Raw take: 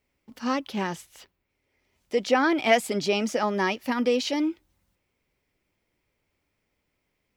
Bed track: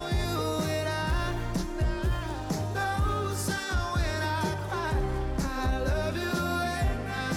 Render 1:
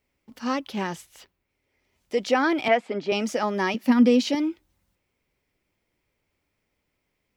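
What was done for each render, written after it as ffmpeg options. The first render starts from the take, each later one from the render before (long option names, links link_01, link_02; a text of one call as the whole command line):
ffmpeg -i in.wav -filter_complex "[0:a]asettb=1/sr,asplit=3[link_01][link_02][link_03];[link_01]atrim=end=2.684[link_04];[link_02]atrim=start=2.68:end=3.12,asetpts=PTS-STARTPTS,afade=type=in:duration=0.004:curve=qsin,afade=type=out:start_time=0.436:duration=0.004:curve=qsin,highpass=230,lowpass=2200[link_05];[link_03]atrim=start=3.116[link_06];[link_04][link_05]acrossfade=duration=0.004:curve1=hsin:curve2=qsin[link_07];[link_07][link_06]acrossfade=duration=0.004:curve1=qsin:curve2=hsin,asettb=1/sr,asplit=3[link_08][link_09][link_10];[link_08]atrim=end=3.744[link_11];[link_09]atrim=start=3.74:end=4.35,asetpts=PTS-STARTPTS,afade=type=in:duration=0.004:curve=qsin,afade=type=out:start_time=0.606:duration=0.004:curve=qsin,highpass=frequency=210:width_type=q:width=4.9[link_12];[link_10]atrim=start=4.346[link_13];[link_11][link_12]acrossfade=duration=0.004:curve1=hsin:curve2=qsin[link_14];[link_14][link_13]acrossfade=duration=0.004:curve1=qsin:curve2=hsin" out.wav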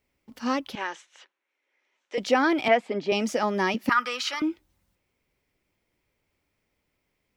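ffmpeg -i in.wav -filter_complex "[0:a]asettb=1/sr,asplit=3[link_01][link_02][link_03];[link_01]atrim=end=0.754[link_04];[link_02]atrim=start=0.75:end=2.18,asetpts=PTS-STARTPTS,afade=type=in:duration=0.004:curve=qsin,afade=type=out:start_time=1.426:duration=0.004:curve=qsin,highpass=frequency=380:width=0.5412,highpass=frequency=380:width=1.3066,equalizer=frequency=420:width_type=q:width=4:gain=-8,equalizer=frequency=680:width_type=q:width=4:gain=-6,equalizer=frequency=1600:width_type=q:width=4:gain=4,equalizer=frequency=4800:width_type=q:width=4:gain=-9,lowpass=frequency=6400:width=0.5412,lowpass=frequency=6400:width=1.3066[link_05];[link_03]atrim=start=2.176[link_06];[link_04][link_05]acrossfade=duration=0.004:curve1=hsin:curve2=qsin[link_07];[link_07][link_06]acrossfade=duration=0.004:curve1=qsin:curve2=hsin,asettb=1/sr,asplit=3[link_08][link_09][link_10];[link_08]atrim=end=2.824[link_11];[link_09]atrim=start=2.82:end=3.29,asetpts=PTS-STARTPTS,afade=type=in:duration=0.004:curve=qsin,afade=type=out:start_time=0.466:duration=0.004:curve=qsin,bandreject=frequency=1400:width=8.3[link_12];[link_10]atrim=start=3.286[link_13];[link_11][link_12]acrossfade=duration=0.004:curve1=hsin:curve2=qsin[link_14];[link_14][link_13]acrossfade=duration=0.004:curve1=qsin:curve2=hsin,asettb=1/sr,asplit=3[link_15][link_16][link_17];[link_15]atrim=end=3.894[link_18];[link_16]atrim=start=3.89:end=4.42,asetpts=PTS-STARTPTS,afade=type=in:duration=0.004:curve=qsin,afade=type=out:start_time=0.526:duration=0.004:curve=qsin,highpass=frequency=1300:width_type=q:width=7.4[link_19];[link_17]atrim=start=4.416[link_20];[link_18][link_19]acrossfade=duration=0.004:curve1=hsin:curve2=qsin[link_21];[link_21][link_20]acrossfade=duration=0.004:curve1=qsin:curve2=hsin" out.wav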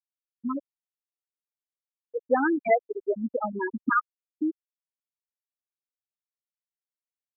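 ffmpeg -i in.wav -af "afftfilt=real='re*gte(hypot(re,im),0.355)':imag='im*gte(hypot(re,im),0.355)':win_size=1024:overlap=0.75,equalizer=frequency=71:width=1.1:gain=-7" out.wav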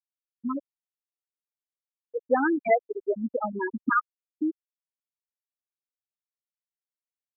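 ffmpeg -i in.wav -af anull out.wav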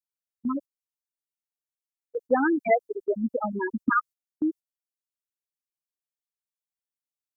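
ffmpeg -i in.wav -af "agate=range=-11dB:threshold=-39dB:ratio=16:detection=peak,bass=frequency=250:gain=5,treble=frequency=4000:gain=10" out.wav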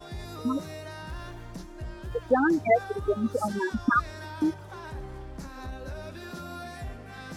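ffmpeg -i in.wav -i bed.wav -filter_complex "[1:a]volume=-10.5dB[link_01];[0:a][link_01]amix=inputs=2:normalize=0" out.wav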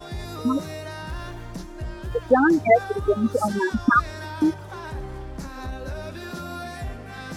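ffmpeg -i in.wav -af "volume=5.5dB" out.wav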